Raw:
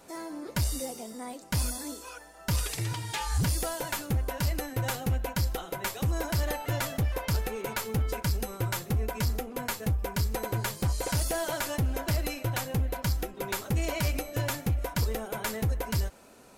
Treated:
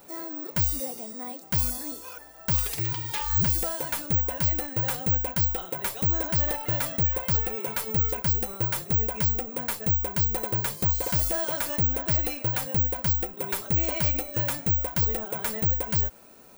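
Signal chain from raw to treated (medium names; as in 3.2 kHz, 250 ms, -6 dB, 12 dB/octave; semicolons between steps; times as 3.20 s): careless resampling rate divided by 2×, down none, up zero stuff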